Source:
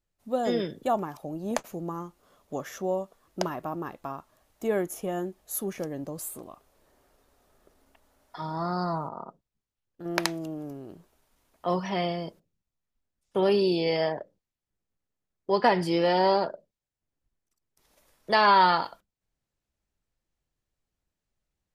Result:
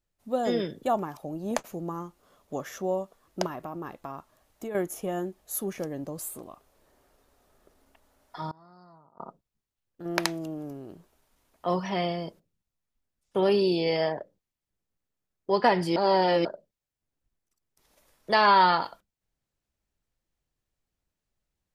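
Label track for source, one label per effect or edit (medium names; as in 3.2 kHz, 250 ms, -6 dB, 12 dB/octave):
3.460000	4.750000	compression, threshold -32 dBFS
8.480000	9.200000	inverted gate shuts at -26 dBFS, range -25 dB
15.960000	16.450000	reverse
18.340000	18.790000	low-pass 11 kHz -> 5.2 kHz 24 dB/octave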